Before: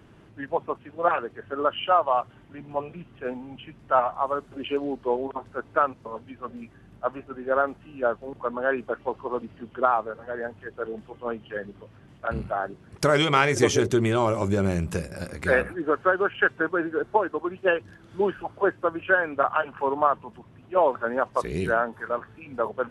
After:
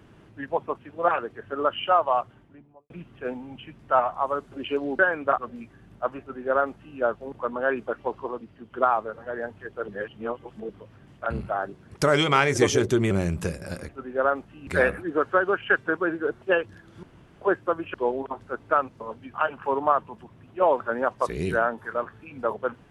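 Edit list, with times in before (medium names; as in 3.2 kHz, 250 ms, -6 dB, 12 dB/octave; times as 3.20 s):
2.12–2.90 s: studio fade out
4.99–6.39 s: swap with 19.10–19.49 s
7.21–7.99 s: copy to 15.39 s
9.32–9.74 s: gain -5 dB
10.89–11.70 s: reverse
14.12–14.61 s: delete
17.14–17.58 s: delete
18.19–18.57 s: room tone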